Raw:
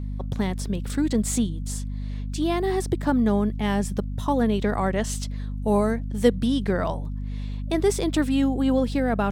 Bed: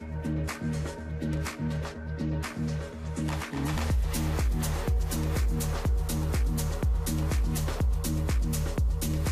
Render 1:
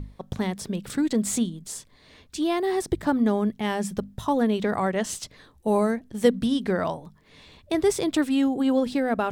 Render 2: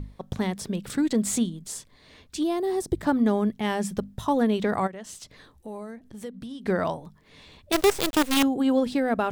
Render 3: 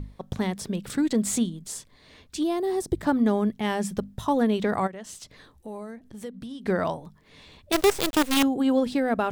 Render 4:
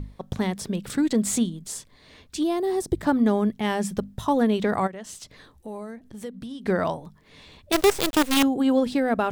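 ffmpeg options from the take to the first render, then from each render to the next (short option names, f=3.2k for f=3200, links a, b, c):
-af "bandreject=f=50:t=h:w=6,bandreject=f=100:t=h:w=6,bandreject=f=150:t=h:w=6,bandreject=f=200:t=h:w=6,bandreject=f=250:t=h:w=6"
-filter_complex "[0:a]asettb=1/sr,asplit=3[a][b][c];[a]atrim=end=2.434[d];[b]atrim=start=2.43:end=2.97,asetpts=PTS-STARTPTS,afade=t=in:d=0.004:c=qsin,afade=t=out:st=0.536:d=0.004:c=qsin,equalizer=f=2k:t=o:w=2.2:g=-9.5[e];[c]atrim=start=2.966[f];[d][e]acrossfade=d=0.004:c1=hsin:c2=qsin[g];[g][f]acrossfade=d=0.004:c1=qsin:c2=hsin,asplit=3[h][i][j];[h]afade=t=out:st=4.86:d=0.02[k];[i]acompressor=threshold=-42dB:ratio=2.5:attack=3.2:release=140:knee=1:detection=peak,afade=t=in:st=4.86:d=0.02,afade=t=out:st=6.65:d=0.02[l];[j]afade=t=in:st=6.65:d=0.02[m];[k][l][m]amix=inputs=3:normalize=0,asettb=1/sr,asplit=3[n][o][p];[n]atrim=end=7.724[q];[o]atrim=start=7.72:end=8.43,asetpts=PTS-STARTPTS,afade=t=in:d=0.004:c=qsin,afade=t=out:st=0.706:d=0.004:c=qsin,acrusher=bits=4:dc=4:mix=0:aa=0.000001[r];[p]atrim=start=8.426[s];[q][r]acrossfade=d=0.004:c1=hsin:c2=qsin[t];[t][s]acrossfade=d=0.004:c1=qsin:c2=hsin"
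-af anull
-af "volume=1.5dB"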